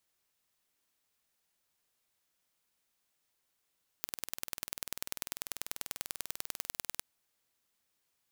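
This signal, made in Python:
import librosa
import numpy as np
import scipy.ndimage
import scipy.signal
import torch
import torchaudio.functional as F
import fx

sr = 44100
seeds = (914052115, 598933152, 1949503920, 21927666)

y = fx.impulse_train(sr, length_s=2.98, per_s=20.3, accent_every=2, level_db=-7.5)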